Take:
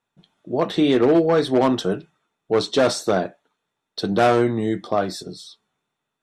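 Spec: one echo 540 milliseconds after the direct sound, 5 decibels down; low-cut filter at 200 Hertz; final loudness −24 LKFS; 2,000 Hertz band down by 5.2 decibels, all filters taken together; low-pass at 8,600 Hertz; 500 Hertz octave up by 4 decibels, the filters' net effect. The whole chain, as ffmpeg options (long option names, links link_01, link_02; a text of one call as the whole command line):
ffmpeg -i in.wav -af "highpass=200,lowpass=8600,equalizer=frequency=500:width_type=o:gain=5.5,equalizer=frequency=2000:width_type=o:gain=-8,aecho=1:1:540:0.562,volume=-6.5dB" out.wav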